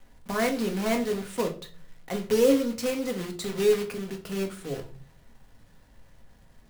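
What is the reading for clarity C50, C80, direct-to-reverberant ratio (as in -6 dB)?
12.5 dB, 18.0 dB, 3.0 dB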